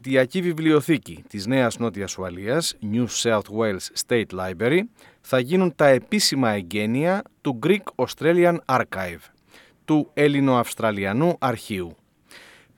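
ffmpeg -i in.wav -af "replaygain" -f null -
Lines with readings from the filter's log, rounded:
track_gain = +1.1 dB
track_peak = 0.444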